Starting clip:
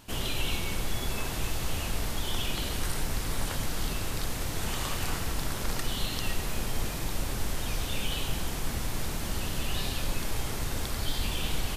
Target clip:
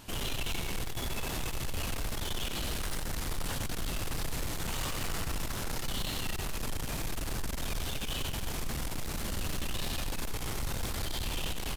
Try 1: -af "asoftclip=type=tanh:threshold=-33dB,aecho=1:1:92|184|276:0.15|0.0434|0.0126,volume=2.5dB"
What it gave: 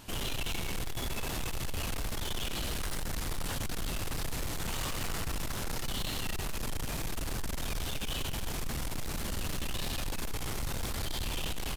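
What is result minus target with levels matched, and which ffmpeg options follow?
echo-to-direct -6.5 dB
-af "asoftclip=type=tanh:threshold=-33dB,aecho=1:1:92|184|276:0.316|0.0917|0.0266,volume=2.5dB"

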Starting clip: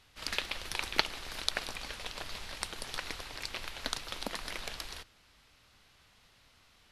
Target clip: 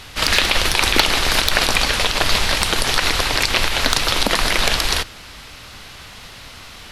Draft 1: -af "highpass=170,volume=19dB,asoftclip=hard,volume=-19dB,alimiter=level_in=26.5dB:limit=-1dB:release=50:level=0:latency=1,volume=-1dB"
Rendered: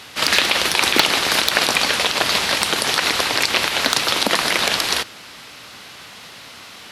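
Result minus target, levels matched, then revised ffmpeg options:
125 Hz band -9.0 dB
-af "volume=19dB,asoftclip=hard,volume=-19dB,alimiter=level_in=26.5dB:limit=-1dB:release=50:level=0:latency=1,volume=-1dB"

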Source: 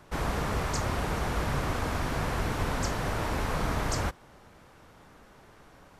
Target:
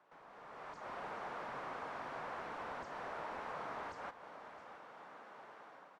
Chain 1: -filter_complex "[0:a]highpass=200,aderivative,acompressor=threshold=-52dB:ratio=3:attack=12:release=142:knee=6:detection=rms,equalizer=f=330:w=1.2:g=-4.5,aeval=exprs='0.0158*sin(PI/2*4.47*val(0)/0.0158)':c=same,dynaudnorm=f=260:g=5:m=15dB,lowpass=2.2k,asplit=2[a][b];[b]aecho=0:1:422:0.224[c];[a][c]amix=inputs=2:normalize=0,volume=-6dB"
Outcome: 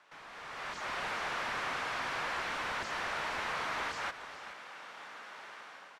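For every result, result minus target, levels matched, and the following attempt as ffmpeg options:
echo 0.243 s early; compressor: peak gain reduction -4.5 dB; 2000 Hz band +3.5 dB
-filter_complex "[0:a]highpass=200,aderivative,acompressor=threshold=-52dB:ratio=3:attack=12:release=142:knee=6:detection=rms,equalizer=f=330:w=1.2:g=-4.5,aeval=exprs='0.0158*sin(PI/2*4.47*val(0)/0.0158)':c=same,dynaudnorm=f=260:g=5:m=15dB,lowpass=2.2k,asplit=2[a][b];[b]aecho=0:1:665:0.224[c];[a][c]amix=inputs=2:normalize=0,volume=-6dB"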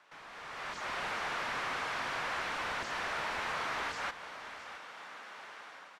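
compressor: peak gain reduction -4.5 dB; 2000 Hz band +3.5 dB
-filter_complex "[0:a]highpass=200,aderivative,acompressor=threshold=-59dB:ratio=3:attack=12:release=142:knee=6:detection=rms,equalizer=f=330:w=1.2:g=-4.5,aeval=exprs='0.0158*sin(PI/2*4.47*val(0)/0.0158)':c=same,dynaudnorm=f=260:g=5:m=15dB,lowpass=2.2k,asplit=2[a][b];[b]aecho=0:1:665:0.224[c];[a][c]amix=inputs=2:normalize=0,volume=-6dB"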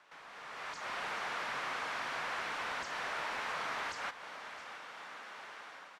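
2000 Hz band +4.0 dB
-filter_complex "[0:a]highpass=200,aderivative,acompressor=threshold=-59dB:ratio=3:attack=12:release=142:knee=6:detection=rms,equalizer=f=330:w=1.2:g=-4.5,aeval=exprs='0.0158*sin(PI/2*4.47*val(0)/0.0158)':c=same,dynaudnorm=f=260:g=5:m=15dB,lowpass=860,asplit=2[a][b];[b]aecho=0:1:665:0.224[c];[a][c]amix=inputs=2:normalize=0,volume=-6dB"

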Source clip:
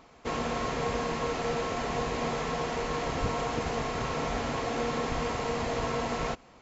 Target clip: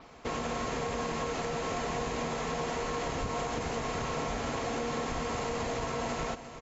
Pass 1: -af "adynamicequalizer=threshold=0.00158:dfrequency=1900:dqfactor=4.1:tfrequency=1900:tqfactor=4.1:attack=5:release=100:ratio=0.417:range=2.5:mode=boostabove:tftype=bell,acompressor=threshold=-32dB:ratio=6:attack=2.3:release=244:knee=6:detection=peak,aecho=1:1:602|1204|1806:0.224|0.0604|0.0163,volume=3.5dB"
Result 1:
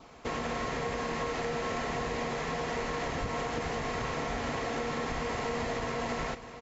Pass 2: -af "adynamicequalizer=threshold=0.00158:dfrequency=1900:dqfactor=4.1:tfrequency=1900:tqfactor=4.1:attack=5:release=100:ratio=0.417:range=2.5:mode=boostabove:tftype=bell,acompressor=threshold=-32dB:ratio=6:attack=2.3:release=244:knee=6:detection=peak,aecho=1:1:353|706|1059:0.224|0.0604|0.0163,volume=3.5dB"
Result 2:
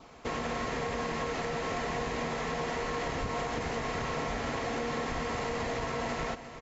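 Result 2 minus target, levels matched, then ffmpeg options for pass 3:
8000 Hz band -3.5 dB
-af "adynamicequalizer=threshold=0.00158:dfrequency=6900:dqfactor=4.1:tfrequency=6900:tqfactor=4.1:attack=5:release=100:ratio=0.417:range=2.5:mode=boostabove:tftype=bell,acompressor=threshold=-32dB:ratio=6:attack=2.3:release=244:knee=6:detection=peak,aecho=1:1:353|706|1059:0.224|0.0604|0.0163,volume=3.5dB"

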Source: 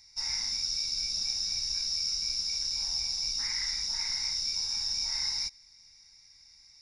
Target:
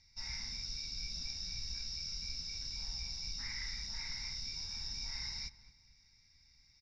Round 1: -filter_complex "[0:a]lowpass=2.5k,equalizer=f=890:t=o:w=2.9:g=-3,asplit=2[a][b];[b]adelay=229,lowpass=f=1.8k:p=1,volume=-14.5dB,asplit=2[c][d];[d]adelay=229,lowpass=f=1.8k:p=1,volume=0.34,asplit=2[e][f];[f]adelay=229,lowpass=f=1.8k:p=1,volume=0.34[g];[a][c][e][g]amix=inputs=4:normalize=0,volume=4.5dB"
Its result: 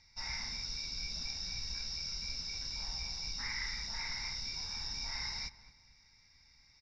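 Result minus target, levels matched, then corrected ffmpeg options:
1000 Hz band +7.5 dB
-filter_complex "[0:a]lowpass=2.5k,equalizer=f=890:t=o:w=2.9:g=-13,asplit=2[a][b];[b]adelay=229,lowpass=f=1.8k:p=1,volume=-14.5dB,asplit=2[c][d];[d]adelay=229,lowpass=f=1.8k:p=1,volume=0.34,asplit=2[e][f];[f]adelay=229,lowpass=f=1.8k:p=1,volume=0.34[g];[a][c][e][g]amix=inputs=4:normalize=0,volume=4.5dB"

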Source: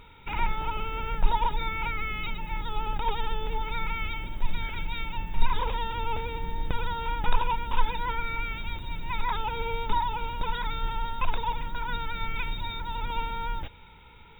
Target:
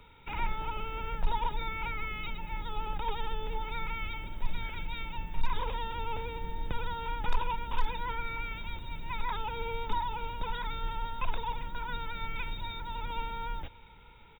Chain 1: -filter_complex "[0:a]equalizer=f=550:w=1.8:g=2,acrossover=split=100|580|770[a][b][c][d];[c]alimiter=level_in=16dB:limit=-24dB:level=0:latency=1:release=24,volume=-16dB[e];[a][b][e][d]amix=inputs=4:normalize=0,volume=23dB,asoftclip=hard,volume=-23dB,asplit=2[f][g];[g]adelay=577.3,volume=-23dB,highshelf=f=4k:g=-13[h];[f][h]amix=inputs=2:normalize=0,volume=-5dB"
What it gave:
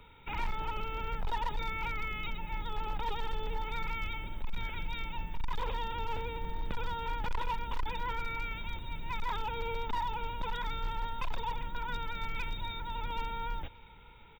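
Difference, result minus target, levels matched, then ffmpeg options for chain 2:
overloaded stage: distortion +12 dB
-filter_complex "[0:a]equalizer=f=550:w=1.8:g=2,acrossover=split=100|580|770[a][b][c][d];[c]alimiter=level_in=16dB:limit=-24dB:level=0:latency=1:release=24,volume=-16dB[e];[a][b][e][d]amix=inputs=4:normalize=0,volume=13.5dB,asoftclip=hard,volume=-13.5dB,asplit=2[f][g];[g]adelay=577.3,volume=-23dB,highshelf=f=4k:g=-13[h];[f][h]amix=inputs=2:normalize=0,volume=-5dB"

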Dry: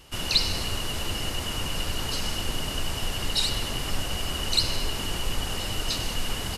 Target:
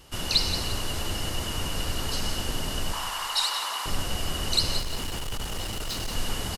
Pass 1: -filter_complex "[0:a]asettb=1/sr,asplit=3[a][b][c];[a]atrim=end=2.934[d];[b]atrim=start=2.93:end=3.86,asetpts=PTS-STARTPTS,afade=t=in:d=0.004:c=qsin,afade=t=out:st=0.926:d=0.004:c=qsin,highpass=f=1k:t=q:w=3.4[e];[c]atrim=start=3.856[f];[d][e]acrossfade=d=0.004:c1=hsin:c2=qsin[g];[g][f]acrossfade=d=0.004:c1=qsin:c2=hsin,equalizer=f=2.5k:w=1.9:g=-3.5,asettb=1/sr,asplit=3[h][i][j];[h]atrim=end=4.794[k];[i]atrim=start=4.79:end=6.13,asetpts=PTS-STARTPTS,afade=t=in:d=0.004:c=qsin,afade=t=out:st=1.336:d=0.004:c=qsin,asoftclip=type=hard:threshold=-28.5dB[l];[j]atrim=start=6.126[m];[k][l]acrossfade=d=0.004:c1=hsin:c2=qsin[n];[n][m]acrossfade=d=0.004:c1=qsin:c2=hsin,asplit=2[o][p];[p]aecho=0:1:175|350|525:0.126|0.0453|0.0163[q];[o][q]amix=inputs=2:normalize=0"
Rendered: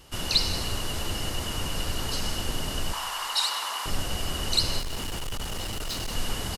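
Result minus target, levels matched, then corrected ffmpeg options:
echo-to-direct -7.5 dB
-filter_complex "[0:a]asettb=1/sr,asplit=3[a][b][c];[a]atrim=end=2.934[d];[b]atrim=start=2.93:end=3.86,asetpts=PTS-STARTPTS,afade=t=in:d=0.004:c=qsin,afade=t=out:st=0.926:d=0.004:c=qsin,highpass=f=1k:t=q:w=3.4[e];[c]atrim=start=3.856[f];[d][e]acrossfade=d=0.004:c1=hsin:c2=qsin[g];[g][f]acrossfade=d=0.004:c1=qsin:c2=hsin,equalizer=f=2.5k:w=1.9:g=-3.5,asettb=1/sr,asplit=3[h][i][j];[h]atrim=end=4.794[k];[i]atrim=start=4.79:end=6.13,asetpts=PTS-STARTPTS,afade=t=in:d=0.004:c=qsin,afade=t=out:st=1.336:d=0.004:c=qsin,asoftclip=type=hard:threshold=-28.5dB[l];[j]atrim=start=6.126[m];[k][l]acrossfade=d=0.004:c1=hsin:c2=qsin[n];[n][m]acrossfade=d=0.004:c1=qsin:c2=hsin,asplit=2[o][p];[p]aecho=0:1:175|350|525|700:0.299|0.107|0.0387|0.0139[q];[o][q]amix=inputs=2:normalize=0"

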